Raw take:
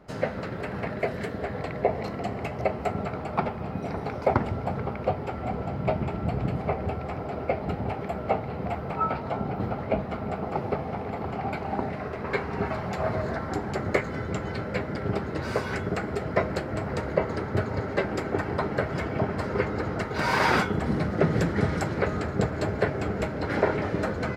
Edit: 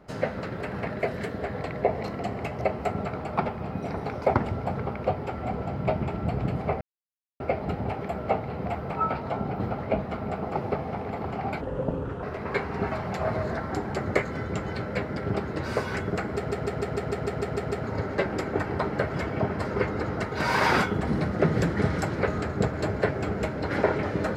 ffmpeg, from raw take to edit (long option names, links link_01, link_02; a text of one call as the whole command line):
ffmpeg -i in.wav -filter_complex "[0:a]asplit=15[link_01][link_02][link_03][link_04][link_05][link_06][link_07][link_08][link_09][link_10][link_11][link_12][link_13][link_14][link_15];[link_01]atrim=end=6.81,asetpts=PTS-STARTPTS,afade=type=out:start_time=6.806:duration=0.004:curve=hsin[link_16];[link_02]atrim=start=6.81:end=7.4,asetpts=PTS-STARTPTS,volume=0[link_17];[link_03]atrim=start=7.4:end=11.614,asetpts=PTS-STARTPTS,afade=type=in:duration=0.004:curve=hsin[link_18];[link_04]atrim=start=11.61:end=12.02,asetpts=PTS-STARTPTS,asetrate=29106,aresample=44100,atrim=end_sample=27395,asetpts=PTS-STARTPTS[link_19];[link_05]atrim=start=12.016:end=16.282[link_20];[link_06]atrim=start=16.128:end=16.282[link_21];[link_07]atrim=start=16.128:end=16.282[link_22];[link_08]atrim=start=16.128:end=16.282[link_23];[link_09]atrim=start=16.128:end=16.282[link_24];[link_10]atrim=start=16.128:end=16.282[link_25];[link_11]atrim=start=16.128:end=16.282[link_26];[link_12]atrim=start=16.128:end=16.282[link_27];[link_13]atrim=start=16.128:end=16.282[link_28];[link_14]atrim=start=16.128:end=16.282[link_29];[link_15]atrim=start=17.628[link_30];[link_16][link_17][link_18]concat=n=3:v=0:a=1[link_31];[link_31][link_19]acrossfade=duration=0.004:curve1=hsin:curve2=hsin[link_32];[link_32][link_20]acrossfade=duration=0.004:curve1=hsin:curve2=hsin[link_33];[link_33][link_21]acrossfade=duration=0.004:curve1=hsin:curve2=hsin[link_34];[link_34][link_22]acrossfade=duration=0.004:curve1=hsin:curve2=hsin[link_35];[link_35][link_23]acrossfade=duration=0.004:curve1=hsin:curve2=hsin[link_36];[link_36][link_24]acrossfade=duration=0.004:curve1=hsin:curve2=hsin[link_37];[link_37][link_25]acrossfade=duration=0.004:curve1=hsin:curve2=hsin[link_38];[link_38][link_26]acrossfade=duration=0.004:curve1=hsin:curve2=hsin[link_39];[link_39][link_27]acrossfade=duration=0.004:curve1=hsin:curve2=hsin[link_40];[link_40][link_28]acrossfade=duration=0.004:curve1=hsin:curve2=hsin[link_41];[link_41][link_29]acrossfade=duration=0.004:curve1=hsin:curve2=hsin[link_42];[link_42][link_30]acrossfade=duration=0.004:curve1=hsin:curve2=hsin" out.wav